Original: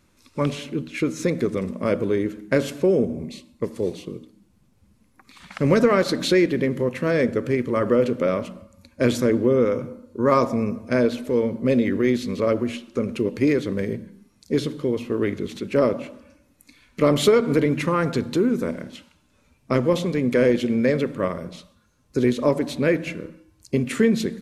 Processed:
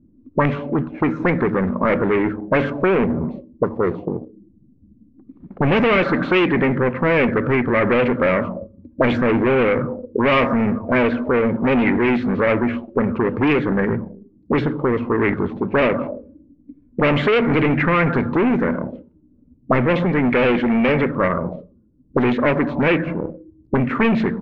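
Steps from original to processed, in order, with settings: sample leveller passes 1; low shelf 350 Hz +4 dB; notches 50/100 Hz; soft clip -17.5 dBFS, distortion -8 dB; air absorption 63 m; envelope low-pass 270–4000 Hz up, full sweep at -16.5 dBFS; gain +3.5 dB

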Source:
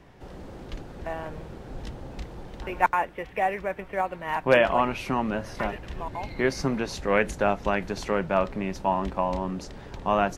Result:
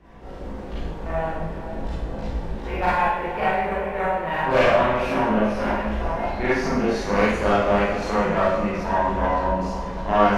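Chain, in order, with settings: in parallel at +0.5 dB: compressor, threshold -31 dBFS, peak gain reduction 16.5 dB; on the sum: hard clip -9 dBFS, distortion -24 dB; bell 110 Hz -8.5 dB 1.2 oct; chorus voices 6, 0.34 Hz, delay 19 ms, depth 1.1 ms; high shelf 2600 Hz -10 dB; on a send: diffused feedback echo 0.49 s, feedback 47%, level -11 dB; on the sum: added harmonics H 4 -14 dB, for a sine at -9.5 dBFS; Schroeder reverb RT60 0.86 s, combs from 33 ms, DRR -8.5 dB; gain -3 dB

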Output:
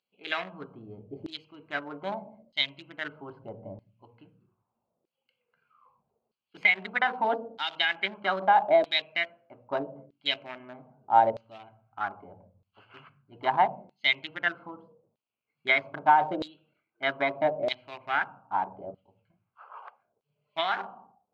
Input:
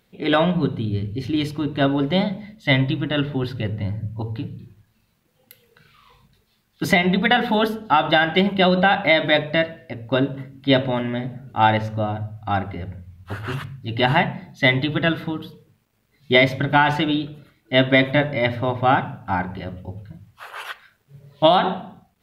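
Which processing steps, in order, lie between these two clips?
Wiener smoothing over 25 samples; LFO band-pass saw down 0.76 Hz 510–3800 Hz; speed mistake 24 fps film run at 25 fps

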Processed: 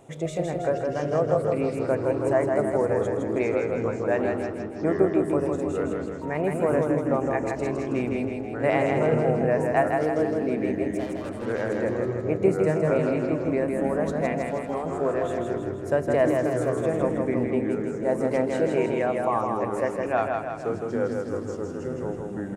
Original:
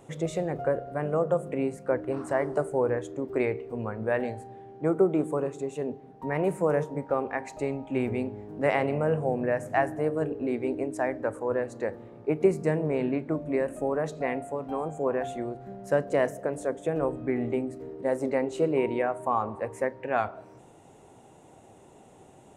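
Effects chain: 10.92–11.77 tube stage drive 35 dB, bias 0.6; small resonant body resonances 650/2400 Hz, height 6 dB; echoes that change speed 0.598 s, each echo -4 st, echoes 2, each echo -6 dB; feedback echo 0.161 s, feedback 56%, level -4 dB

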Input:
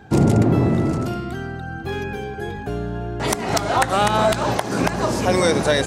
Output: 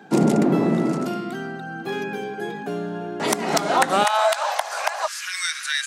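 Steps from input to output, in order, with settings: steep high-pass 160 Hz 48 dB/oct, from 4.03 s 610 Hz, from 5.06 s 1400 Hz

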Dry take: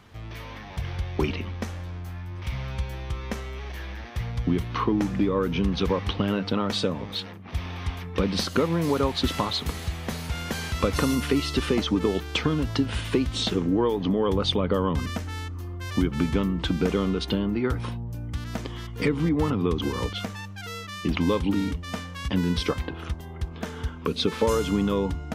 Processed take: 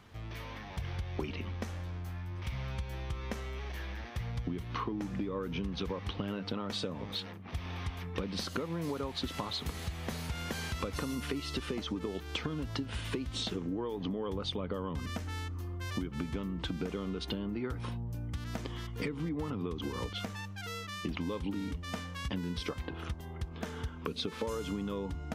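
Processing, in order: compressor, threshold -28 dBFS, peak gain reduction 10.5 dB; gain -4.5 dB

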